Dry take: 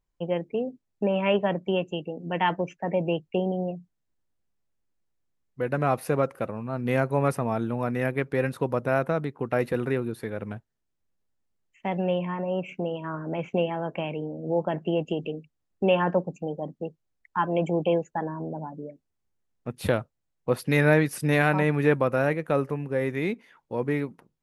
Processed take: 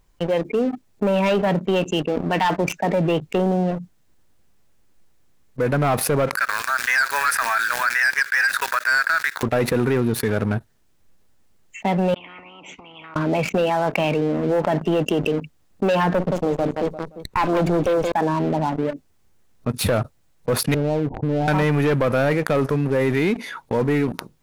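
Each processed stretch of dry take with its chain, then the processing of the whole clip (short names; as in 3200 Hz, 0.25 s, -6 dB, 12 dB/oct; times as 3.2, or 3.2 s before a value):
6.37–9.43 companded quantiser 6-bit + resonant high-pass 1600 Hz, resonance Q 8
12.14–13.16 compressor 12:1, threshold -38 dBFS + vowel filter u + spectral compressor 10:1
16.14–18.12 feedback echo 0.174 s, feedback 24%, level -10.5 dB + running maximum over 9 samples
20.74–21.48 CVSD 32 kbps + Chebyshev low-pass 930 Hz, order 8 + compressor 8:1, threshold -30 dBFS
whole clip: spectral noise reduction 8 dB; sample leveller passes 3; fast leveller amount 70%; gain -6.5 dB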